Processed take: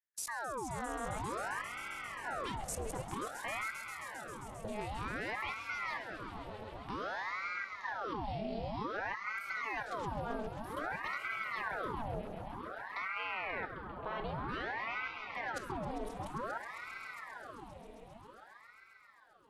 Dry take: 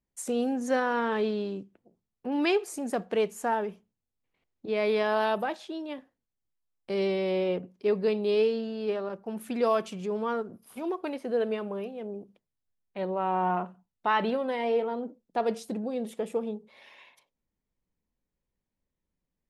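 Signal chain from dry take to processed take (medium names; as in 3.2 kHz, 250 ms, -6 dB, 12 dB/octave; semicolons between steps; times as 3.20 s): level held to a coarse grid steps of 21 dB; echo with a slow build-up 133 ms, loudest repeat 5, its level -13 dB; ring modulator with a swept carrier 1 kHz, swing 80%, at 0.53 Hz; trim +5 dB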